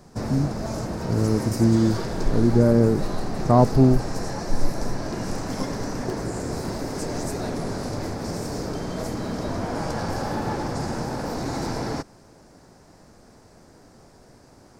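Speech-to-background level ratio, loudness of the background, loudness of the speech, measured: 8.5 dB, -29.5 LUFS, -21.0 LUFS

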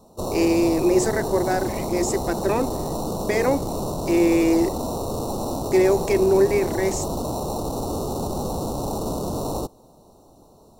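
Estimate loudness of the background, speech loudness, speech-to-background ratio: -27.5 LUFS, -22.0 LUFS, 5.5 dB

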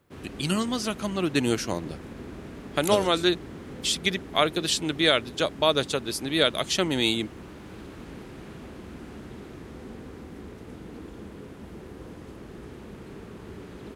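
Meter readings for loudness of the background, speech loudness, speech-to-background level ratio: -42.5 LUFS, -25.5 LUFS, 17.0 dB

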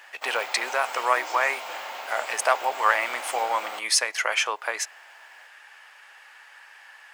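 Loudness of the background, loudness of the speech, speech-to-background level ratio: -35.0 LUFS, -25.5 LUFS, 9.5 dB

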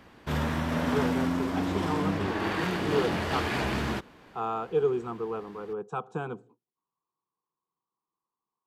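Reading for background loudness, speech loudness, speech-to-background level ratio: -29.5 LUFS, -33.5 LUFS, -4.0 dB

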